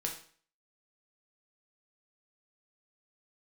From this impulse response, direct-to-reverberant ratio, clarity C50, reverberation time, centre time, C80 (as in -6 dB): 0.0 dB, 7.5 dB, 0.45 s, 22 ms, 12.0 dB